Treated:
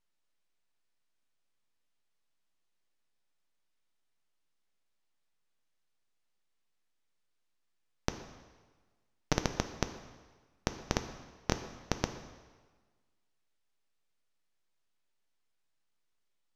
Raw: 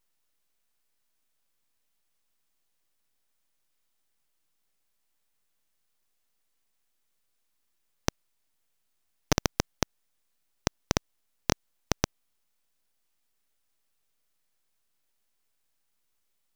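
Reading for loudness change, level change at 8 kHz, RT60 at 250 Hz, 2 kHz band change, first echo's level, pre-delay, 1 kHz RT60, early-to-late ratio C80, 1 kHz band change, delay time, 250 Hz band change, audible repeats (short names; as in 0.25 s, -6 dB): -5.0 dB, -8.0 dB, 1.4 s, -4.5 dB, none, 3 ms, 1.4 s, 11.0 dB, -4.0 dB, none, -4.0 dB, none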